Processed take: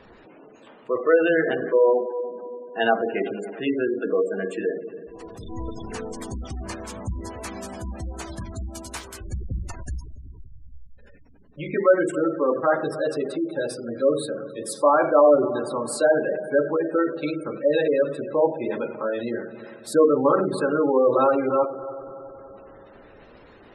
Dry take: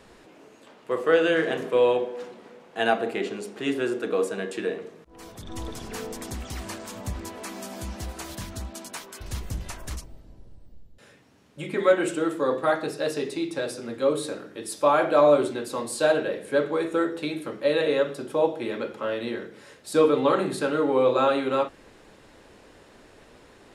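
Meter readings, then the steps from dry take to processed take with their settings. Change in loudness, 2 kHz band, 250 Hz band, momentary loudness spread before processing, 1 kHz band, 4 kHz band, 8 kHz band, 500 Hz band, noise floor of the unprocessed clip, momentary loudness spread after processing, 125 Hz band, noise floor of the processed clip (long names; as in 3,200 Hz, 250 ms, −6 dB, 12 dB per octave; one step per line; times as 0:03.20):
+2.5 dB, +1.0 dB, +2.5 dB, 16 LU, +2.0 dB, −4.5 dB, −0.5 dB, +2.5 dB, −53 dBFS, 17 LU, +2.5 dB, −49 dBFS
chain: echo machine with several playback heads 94 ms, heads first and third, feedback 68%, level −17.5 dB
gate on every frequency bin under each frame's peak −20 dB strong
level +2.5 dB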